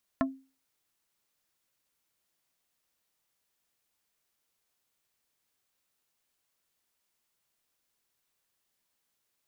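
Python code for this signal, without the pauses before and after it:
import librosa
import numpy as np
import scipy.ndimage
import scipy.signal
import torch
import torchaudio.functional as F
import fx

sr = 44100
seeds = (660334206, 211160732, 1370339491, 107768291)

y = fx.strike_wood(sr, length_s=0.45, level_db=-22.0, body='plate', hz=267.0, decay_s=0.34, tilt_db=2, modes=5)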